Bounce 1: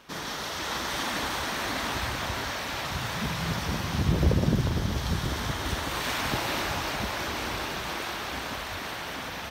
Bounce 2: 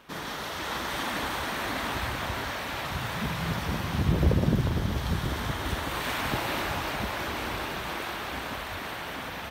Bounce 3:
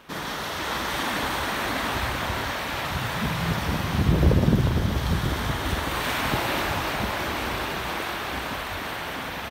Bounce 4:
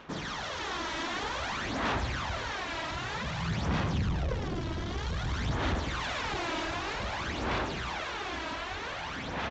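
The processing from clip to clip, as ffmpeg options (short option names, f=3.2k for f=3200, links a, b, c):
-af "equalizer=f=5.6k:w=1.3:g=-6.5"
-filter_complex "[0:a]asplit=2[a][b];[b]adelay=49,volume=-12dB[c];[a][c]amix=inputs=2:normalize=0,volume=4dB"
-af "asoftclip=type=tanh:threshold=-25dB,aphaser=in_gain=1:out_gain=1:delay=3.1:decay=0.55:speed=0.53:type=sinusoidal,aresample=16000,aresample=44100,volume=-5.5dB"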